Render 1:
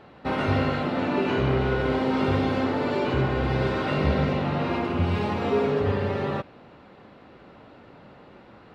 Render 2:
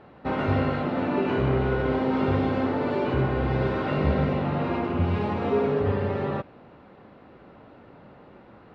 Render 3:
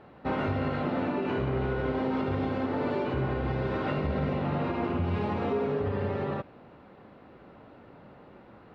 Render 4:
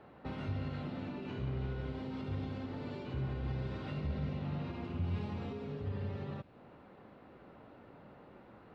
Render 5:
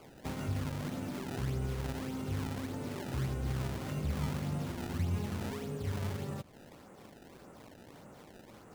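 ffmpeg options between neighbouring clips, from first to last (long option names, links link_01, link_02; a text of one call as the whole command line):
ffmpeg -i in.wav -af "lowpass=frequency=1900:poles=1" out.wav
ffmpeg -i in.wav -af "alimiter=limit=-18.5dB:level=0:latency=1:release=106,volume=-2dB" out.wav
ffmpeg -i in.wav -filter_complex "[0:a]acrossover=split=200|3000[link_01][link_02][link_03];[link_02]acompressor=threshold=-43dB:ratio=4[link_04];[link_01][link_04][link_03]amix=inputs=3:normalize=0,volume=-4.5dB" out.wav
ffmpeg -i in.wav -af "acrusher=samples=23:mix=1:aa=0.000001:lfo=1:lforange=36.8:lforate=1.7,volume=2.5dB" out.wav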